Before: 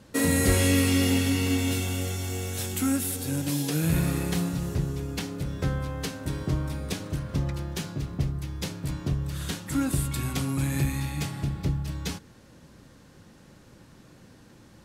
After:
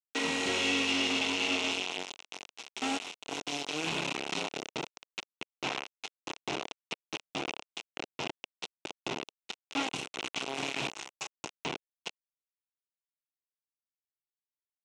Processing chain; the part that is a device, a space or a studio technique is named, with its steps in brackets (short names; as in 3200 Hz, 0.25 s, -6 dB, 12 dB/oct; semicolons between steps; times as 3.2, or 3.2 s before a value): 10.93–11.57 EQ curve 130 Hz 0 dB, 290 Hz -25 dB, 630 Hz +2 dB, 900 Hz +4 dB, 1600 Hz +7 dB, 2800 Hz -24 dB, 4800 Hz +3 dB, 7500 Hz +14 dB, 13000 Hz -12 dB; hand-held game console (bit-crush 4-bit; speaker cabinet 430–5700 Hz, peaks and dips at 550 Hz -8 dB, 1200 Hz -5 dB, 1700 Hz -10 dB, 2700 Hz +6 dB, 4700 Hz -7 dB); gain -2 dB